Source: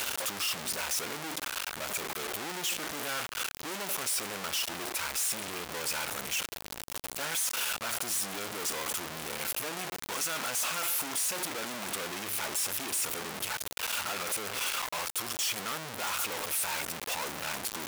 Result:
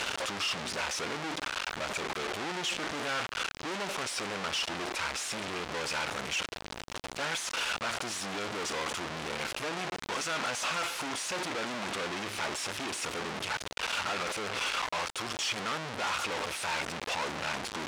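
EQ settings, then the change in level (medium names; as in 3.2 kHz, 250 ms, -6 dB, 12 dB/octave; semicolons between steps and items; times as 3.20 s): distance through air 100 m; +3.5 dB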